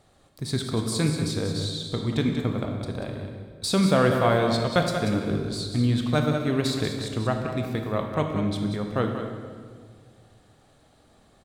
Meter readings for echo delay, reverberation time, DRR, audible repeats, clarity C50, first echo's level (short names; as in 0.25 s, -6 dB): 0.187 s, 1.9 s, 2.0 dB, 1, 3.5 dB, -8.5 dB